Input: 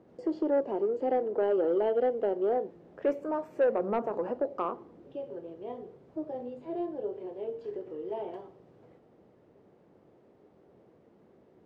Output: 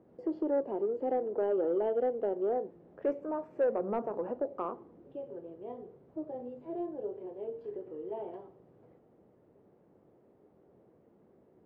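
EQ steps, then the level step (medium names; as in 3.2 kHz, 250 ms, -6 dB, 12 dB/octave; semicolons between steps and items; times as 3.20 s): low-pass 1.3 kHz 6 dB/octave; -2.5 dB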